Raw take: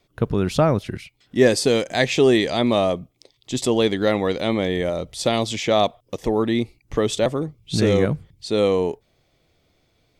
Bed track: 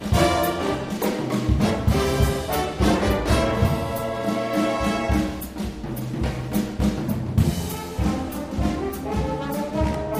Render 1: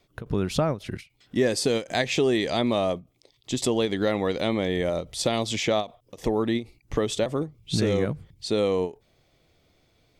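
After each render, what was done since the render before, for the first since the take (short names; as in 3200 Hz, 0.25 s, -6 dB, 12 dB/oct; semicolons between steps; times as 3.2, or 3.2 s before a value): compressor 2.5:1, threshold -22 dBFS, peak gain reduction 8.5 dB; ending taper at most 240 dB/s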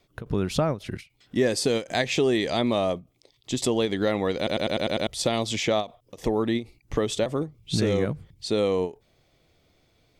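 4.37 stutter in place 0.10 s, 7 plays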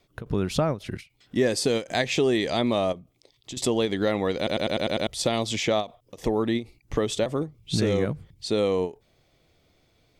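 2.92–3.57 compressor 4:1, threshold -35 dBFS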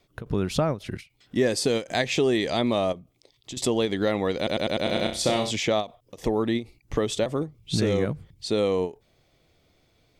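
4.82–5.51 flutter echo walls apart 5.4 m, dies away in 0.37 s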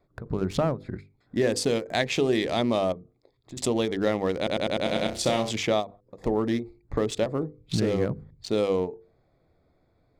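Wiener smoothing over 15 samples; notches 50/100/150/200/250/300/350/400/450/500 Hz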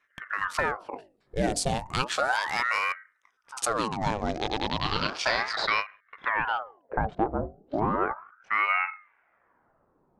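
low-pass sweep 9800 Hz -> 980 Hz, 3.62–7.31; ring modulator with a swept carrier 970 Hz, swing 80%, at 0.34 Hz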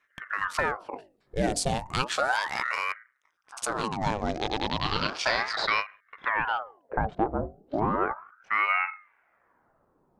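2.47–3.82 ring modulator 30 Hz -> 150 Hz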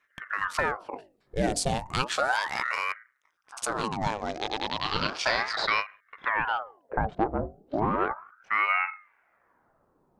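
4.07–4.94 low shelf 290 Hz -10.5 dB; 7.13–8.08 self-modulated delay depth 0.057 ms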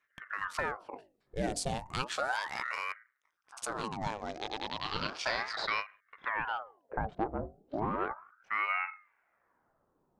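gain -7 dB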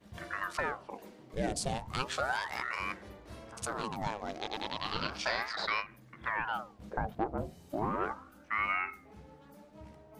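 add bed track -29 dB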